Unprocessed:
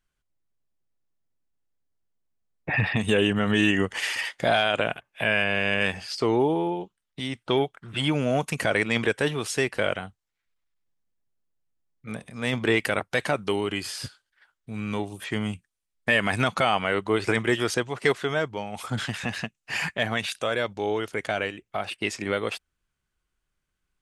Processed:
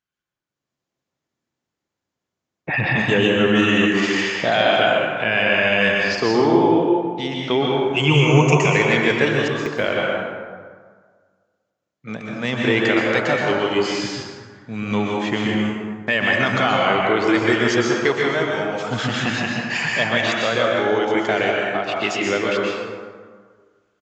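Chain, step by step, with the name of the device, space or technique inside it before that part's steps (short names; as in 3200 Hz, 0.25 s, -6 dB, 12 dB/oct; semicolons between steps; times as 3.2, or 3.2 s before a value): call with lost packets (HPF 120 Hz 12 dB/oct; downsampling 16000 Hz; AGC gain up to 12 dB; packet loss packets of 60 ms bursts); 7.9–8.76 ripple EQ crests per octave 0.74, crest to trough 17 dB; plate-style reverb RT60 1.7 s, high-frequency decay 0.5×, pre-delay 0.11 s, DRR -2.5 dB; gain -5.5 dB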